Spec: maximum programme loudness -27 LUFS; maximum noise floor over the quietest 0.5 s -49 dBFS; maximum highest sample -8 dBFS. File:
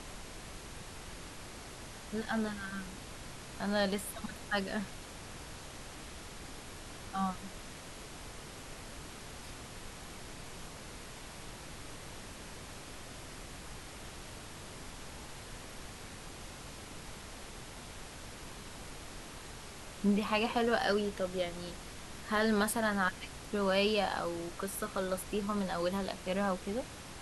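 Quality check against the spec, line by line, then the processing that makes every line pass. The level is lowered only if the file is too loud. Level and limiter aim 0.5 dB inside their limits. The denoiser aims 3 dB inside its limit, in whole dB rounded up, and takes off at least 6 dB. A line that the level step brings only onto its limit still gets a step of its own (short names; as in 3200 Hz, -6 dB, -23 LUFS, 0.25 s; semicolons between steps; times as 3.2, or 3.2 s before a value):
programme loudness -38.0 LUFS: OK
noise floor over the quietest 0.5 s -47 dBFS: fail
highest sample -16.5 dBFS: OK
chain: denoiser 6 dB, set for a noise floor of -47 dBFS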